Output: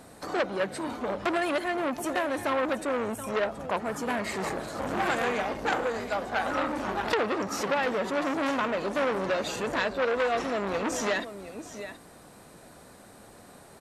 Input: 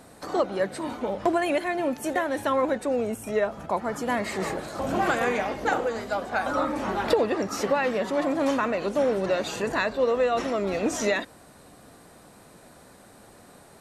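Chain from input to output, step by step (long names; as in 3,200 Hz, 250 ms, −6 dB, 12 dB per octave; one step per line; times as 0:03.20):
single-tap delay 726 ms −14.5 dB
saturating transformer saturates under 2,200 Hz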